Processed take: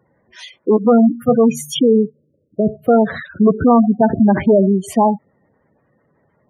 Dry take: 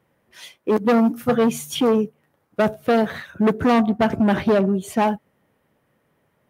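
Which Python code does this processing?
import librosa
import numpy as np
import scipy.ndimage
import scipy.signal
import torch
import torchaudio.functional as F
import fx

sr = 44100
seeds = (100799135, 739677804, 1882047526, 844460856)

y = fx.rattle_buzz(x, sr, strikes_db=-33.0, level_db=-30.0)
y = fx.steep_lowpass(y, sr, hz=560.0, slope=36, at=(1.79, 2.82))
y = fx.spec_gate(y, sr, threshold_db=-15, keep='strong')
y = y * librosa.db_to_amplitude(6.0)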